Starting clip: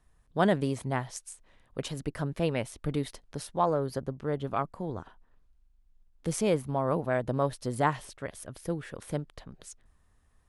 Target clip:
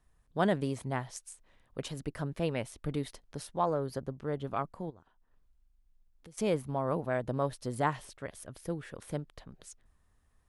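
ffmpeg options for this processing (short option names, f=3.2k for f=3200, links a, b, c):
-filter_complex "[0:a]asplit=3[a][b][c];[a]afade=t=out:st=4.89:d=0.02[d];[b]acompressor=threshold=-55dB:ratio=3,afade=t=in:st=4.89:d=0.02,afade=t=out:st=6.37:d=0.02[e];[c]afade=t=in:st=6.37:d=0.02[f];[d][e][f]amix=inputs=3:normalize=0,volume=-3.5dB"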